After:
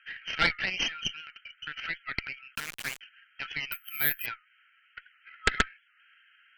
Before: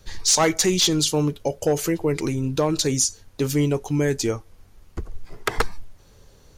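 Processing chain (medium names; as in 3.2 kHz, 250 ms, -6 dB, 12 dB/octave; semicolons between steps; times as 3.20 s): FFT band-pass 1.3–3.2 kHz; in parallel at -0.5 dB: compression 5:1, threshold -47 dBFS, peak gain reduction 22 dB; 2.55–3.01 s: on the sum: word length cut 6-bit, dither none; Chebyshev shaper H 4 -9 dB, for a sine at -9.5 dBFS; 3.72–4.26 s: careless resampling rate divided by 3×, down none, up zero stuff; warped record 78 rpm, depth 100 cents; trim +1 dB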